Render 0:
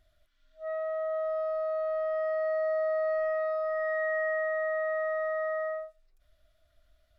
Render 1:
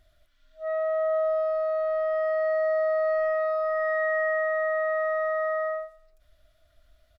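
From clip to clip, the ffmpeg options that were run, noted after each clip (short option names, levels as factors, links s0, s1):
-filter_complex "[0:a]asplit=2[s0][s1];[s1]adelay=104,lowpass=f=2000:p=1,volume=0.168,asplit=2[s2][s3];[s3]adelay=104,lowpass=f=2000:p=1,volume=0.36,asplit=2[s4][s5];[s5]adelay=104,lowpass=f=2000:p=1,volume=0.36[s6];[s0][s2][s4][s6]amix=inputs=4:normalize=0,volume=1.78"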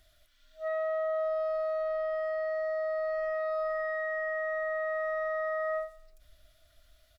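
-filter_complex "[0:a]acrossover=split=400[s0][s1];[s0]dynaudnorm=f=230:g=13:m=3.35[s2];[s2][s1]amix=inputs=2:normalize=0,highshelf=f=2100:g=10.5,alimiter=limit=0.0668:level=0:latency=1,volume=0.708"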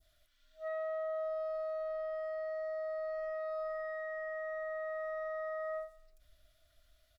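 -af "adynamicequalizer=threshold=0.00562:dfrequency=2200:dqfactor=0.8:tfrequency=2200:tqfactor=0.8:attack=5:release=100:ratio=0.375:range=2:mode=cutabove:tftype=bell,volume=0.501"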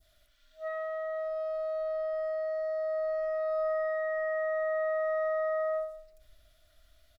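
-filter_complex "[0:a]asplit=2[s0][s1];[s1]adelay=62,lowpass=f=2000:p=1,volume=0.501,asplit=2[s2][s3];[s3]adelay=62,lowpass=f=2000:p=1,volume=0.54,asplit=2[s4][s5];[s5]adelay=62,lowpass=f=2000:p=1,volume=0.54,asplit=2[s6][s7];[s7]adelay=62,lowpass=f=2000:p=1,volume=0.54,asplit=2[s8][s9];[s9]adelay=62,lowpass=f=2000:p=1,volume=0.54,asplit=2[s10][s11];[s11]adelay=62,lowpass=f=2000:p=1,volume=0.54,asplit=2[s12][s13];[s13]adelay=62,lowpass=f=2000:p=1,volume=0.54[s14];[s0][s2][s4][s6][s8][s10][s12][s14]amix=inputs=8:normalize=0,volume=1.68"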